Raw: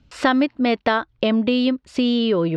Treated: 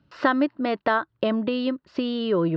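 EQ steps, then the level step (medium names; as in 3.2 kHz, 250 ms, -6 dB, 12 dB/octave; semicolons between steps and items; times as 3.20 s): distance through air 60 m; cabinet simulation 160–5400 Hz, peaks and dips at 240 Hz -9 dB, 470 Hz -6 dB, 770 Hz -6 dB, 2.3 kHz -9 dB, 3.4 kHz -5 dB; treble shelf 3.6 kHz -9.5 dB; +1.5 dB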